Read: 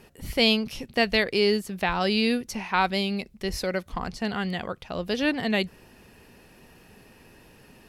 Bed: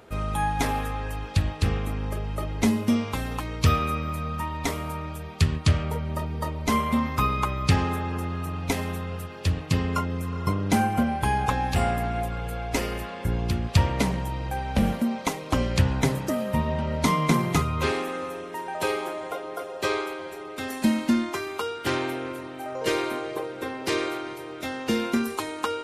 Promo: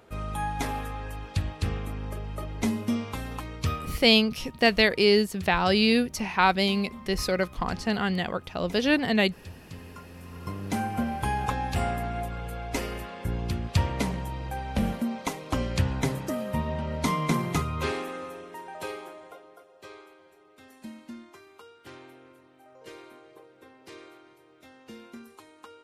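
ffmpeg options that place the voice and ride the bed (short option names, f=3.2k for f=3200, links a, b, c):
-filter_complex "[0:a]adelay=3650,volume=2dB[a];[1:a]volume=10.5dB,afade=t=out:st=3.44:d=0.64:silence=0.188365,afade=t=in:st=10.07:d=1.11:silence=0.16788,afade=t=out:st=17.9:d=1.75:silence=0.149624[b];[a][b]amix=inputs=2:normalize=0"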